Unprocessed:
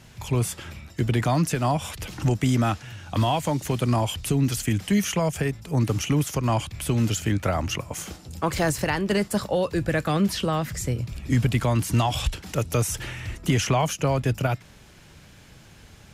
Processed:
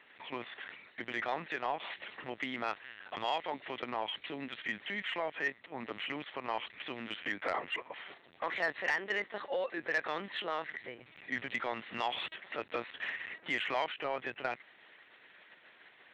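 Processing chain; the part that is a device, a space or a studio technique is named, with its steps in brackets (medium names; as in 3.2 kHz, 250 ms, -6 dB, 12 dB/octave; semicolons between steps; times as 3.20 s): talking toy (LPC vocoder at 8 kHz pitch kept; high-pass 530 Hz 12 dB/octave; peaking EQ 1.9 kHz +10 dB 0.4 oct; saturation -15 dBFS, distortion -18 dB); trim -7 dB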